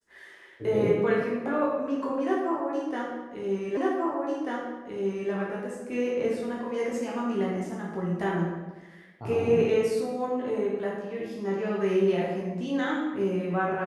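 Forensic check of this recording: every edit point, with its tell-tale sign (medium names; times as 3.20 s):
3.77 s: repeat of the last 1.54 s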